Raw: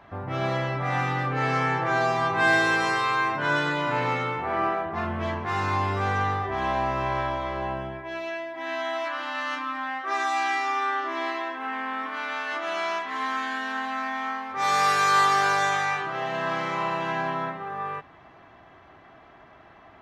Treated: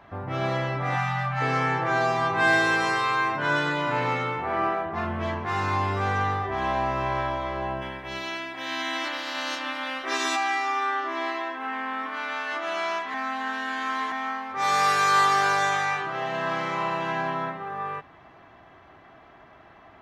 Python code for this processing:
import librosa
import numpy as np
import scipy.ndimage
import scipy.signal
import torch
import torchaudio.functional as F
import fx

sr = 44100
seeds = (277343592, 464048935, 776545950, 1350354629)

y = fx.spec_erase(x, sr, start_s=0.96, length_s=0.45, low_hz=250.0, high_hz=540.0)
y = fx.spec_clip(y, sr, under_db=20, at=(7.81, 10.35), fade=0.02)
y = fx.edit(y, sr, fx.reverse_span(start_s=13.14, length_s=0.98), tone=tone)